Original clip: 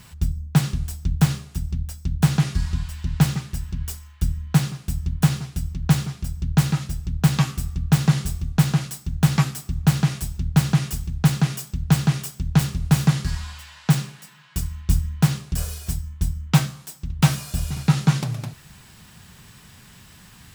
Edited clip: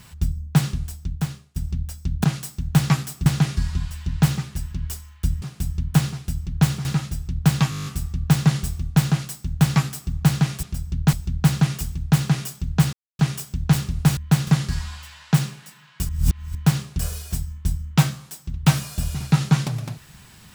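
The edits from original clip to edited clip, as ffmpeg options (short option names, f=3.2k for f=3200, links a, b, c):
-filter_complex "[0:a]asplit=21[a][b][c][d][e][f][g][h][i][j][k][l][m][n][o][p][q][r][s][t][u];[a]atrim=end=1.56,asetpts=PTS-STARTPTS,afade=t=out:st=0.64:d=0.92:silence=0.0891251[v];[b]atrim=start=1.56:end=2.242,asetpts=PTS-STARTPTS,afade=t=in:d=0.004:c=hsin:silence=0.0891251[w];[c]atrim=start=8.718:end=9.742[x];[d]atrim=start=2.238:end=4.402[y];[e]atrim=start=4.698:end=6.132[z];[f]atrim=start=6.628:end=7.502[aa];[g]atrim=start=7.478:end=7.502[ab];[h]atrim=start=7.478:end=7.502[ac];[i]atrim=start=7.478:end=7.502[ad];[j]atrim=start=7.478:end=7.502[ae];[k]atrim=start=7.478:end=7.502[af];[l]atrim=start=7.478:end=7.502[ag];[m]atrim=start=7.478:end=7.502[ah];[n]atrim=start=7.478:end=10.252[ai];[o]atrim=start=6.128:end=6.632[aj];[p]atrim=start=10.248:end=12.05,asetpts=PTS-STARTPTS,afade=t=out:st=1.798:d=0.004:c=hsin,apad=pad_dur=0.26[ak];[q]atrim=start=12.05:end=13.032,asetpts=PTS-STARTPTS,afade=t=in:d=0.004:c=hsin[al];[r]atrim=start=4.398:end=4.702[am];[s]atrim=start=13.028:end=14.652[an];[t]atrim=start=14.648:end=15.112,asetpts=PTS-STARTPTS,areverse[ao];[u]atrim=start=15.108[ap];[v][w]concat=n=2:v=0:a=1[aq];[aq][x]acrossfade=d=0.004:c1=hsin:c2=hsin[ar];[ar][y]acrossfade=d=0.004:c1=hsin:c2=hsin[as];[as][z]acrossfade=d=0.004:c1=hsin:c2=hsin[at];[at][aa]acrossfade=d=0.004:c1=hsin:c2=hsin[au];[au][ab]acrossfade=d=0.004:c1=hsin:c2=hsin[av];[av][ac]acrossfade=d=0.004:c1=hsin:c2=hsin[aw];[aw][ad]acrossfade=d=0.004:c1=hsin:c2=hsin[ax];[ax][ae]acrossfade=d=0.004:c1=hsin:c2=hsin[ay];[ay][af]acrossfade=d=0.004:c1=hsin:c2=hsin[az];[az][ag]acrossfade=d=0.004:c1=hsin:c2=hsin[ba];[ba][ah]acrossfade=d=0.004:c1=hsin:c2=hsin[bb];[bb][ai]acrossfade=d=0.004:c1=hsin:c2=hsin[bc];[bc][aj]acrossfade=d=0.004:c1=hsin:c2=hsin[bd];[ak][al]concat=n=2:v=0:a=1[be];[bd][be]acrossfade=d=0.004:c1=hsin:c2=hsin[bf];[bf][am]acrossfade=d=0.004:c1=hsin:c2=hsin[bg];[bg][an]acrossfade=d=0.004:c1=hsin:c2=hsin[bh];[bh][ao]acrossfade=d=0.004:c1=hsin:c2=hsin[bi];[bi][ap]acrossfade=d=0.004:c1=hsin:c2=hsin"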